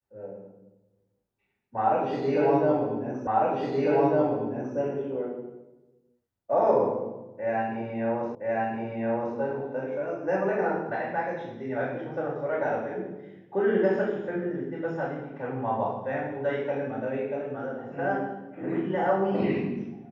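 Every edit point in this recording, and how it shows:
0:03.27: the same again, the last 1.5 s
0:08.35: the same again, the last 1.02 s

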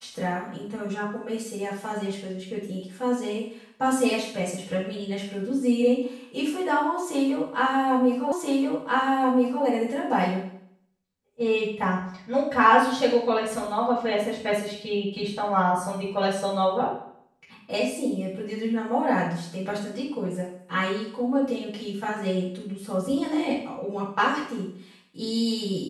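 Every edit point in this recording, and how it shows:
0:08.32: the same again, the last 1.33 s

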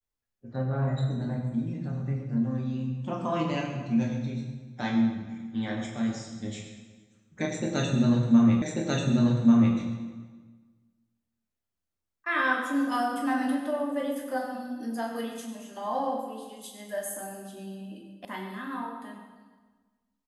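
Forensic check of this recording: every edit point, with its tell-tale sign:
0:08.62: the same again, the last 1.14 s
0:18.25: cut off before it has died away

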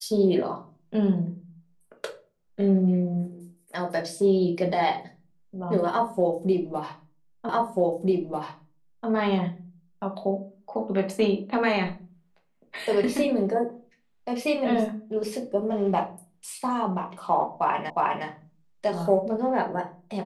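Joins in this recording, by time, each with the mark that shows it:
0:07.49: the same again, the last 1.59 s
0:17.90: the same again, the last 0.36 s

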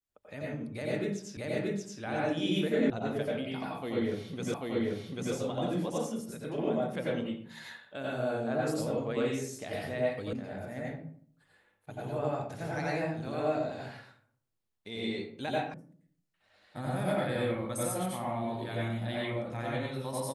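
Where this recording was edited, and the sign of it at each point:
0:01.37: the same again, the last 0.63 s
0:02.90: cut off before it has died away
0:04.54: the same again, the last 0.79 s
0:10.33: cut off before it has died away
0:15.74: cut off before it has died away

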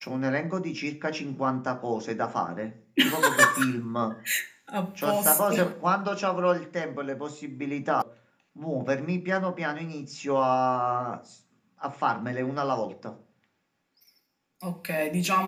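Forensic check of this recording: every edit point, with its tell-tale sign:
0:08.02: cut off before it has died away

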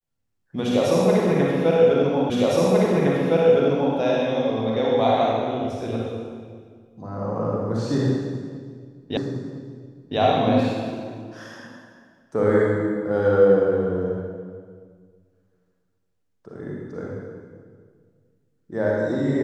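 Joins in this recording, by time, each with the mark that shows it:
0:02.30: the same again, the last 1.66 s
0:09.17: the same again, the last 1.01 s

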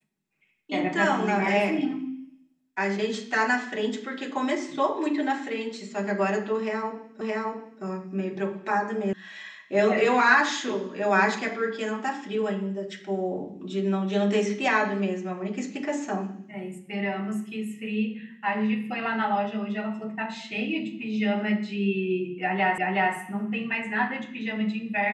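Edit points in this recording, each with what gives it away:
0:07.21: the same again, the last 0.62 s
0:09.13: cut off before it has died away
0:22.78: the same again, the last 0.37 s

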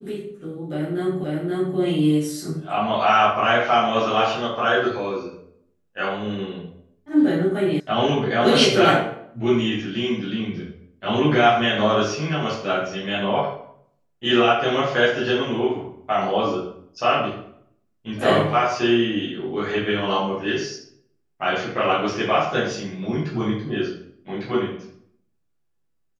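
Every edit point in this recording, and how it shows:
0:01.24: the same again, the last 0.53 s
0:07.80: cut off before it has died away

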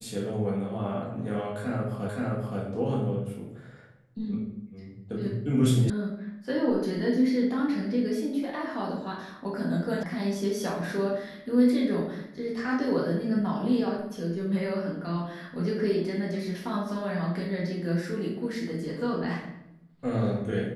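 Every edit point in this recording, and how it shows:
0:02.09: the same again, the last 0.52 s
0:05.90: cut off before it has died away
0:10.03: cut off before it has died away

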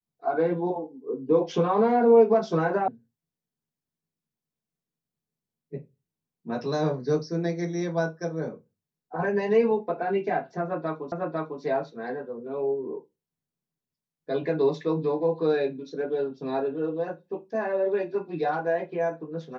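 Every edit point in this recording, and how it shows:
0:02.88: cut off before it has died away
0:11.12: the same again, the last 0.5 s

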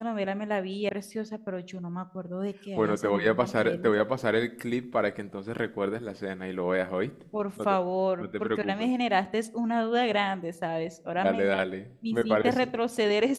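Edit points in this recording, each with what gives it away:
0:00.89: cut off before it has died away

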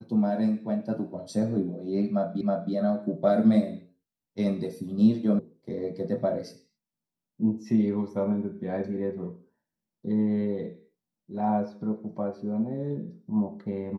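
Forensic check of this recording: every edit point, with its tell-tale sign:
0:02.41: the same again, the last 0.32 s
0:05.39: cut off before it has died away

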